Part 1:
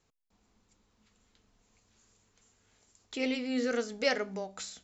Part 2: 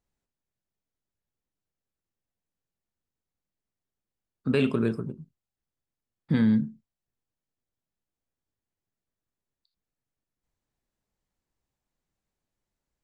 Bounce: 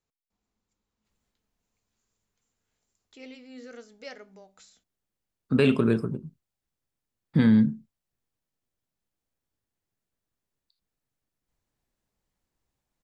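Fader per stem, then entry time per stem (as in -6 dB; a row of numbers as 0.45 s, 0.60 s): -13.5 dB, +3.0 dB; 0.00 s, 1.05 s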